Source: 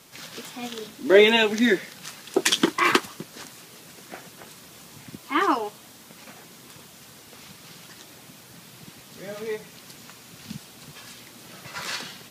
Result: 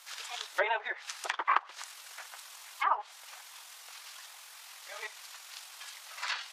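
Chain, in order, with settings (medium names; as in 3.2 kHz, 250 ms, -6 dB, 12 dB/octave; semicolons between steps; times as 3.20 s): in parallel at -10.5 dB: crossover distortion -33.5 dBFS; on the sum: inverse Chebyshev high-pass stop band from 230 Hz, stop band 60 dB; low-pass that closes with the level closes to 1 kHz, closed at -21.5 dBFS; granular stretch 0.53×, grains 46 ms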